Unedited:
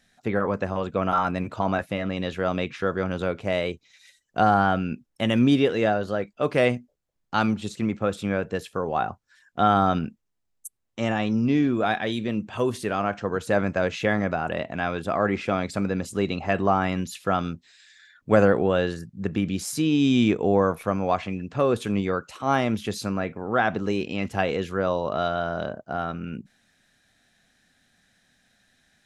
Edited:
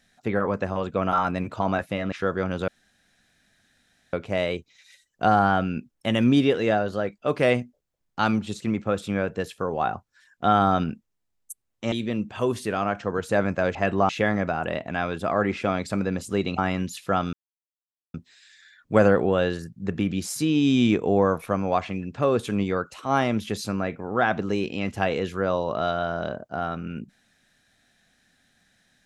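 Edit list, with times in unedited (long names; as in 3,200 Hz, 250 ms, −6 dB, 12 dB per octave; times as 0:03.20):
0:02.12–0:02.72: remove
0:03.28: splice in room tone 1.45 s
0:11.07–0:12.10: remove
0:16.42–0:16.76: move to 0:13.93
0:17.51: splice in silence 0.81 s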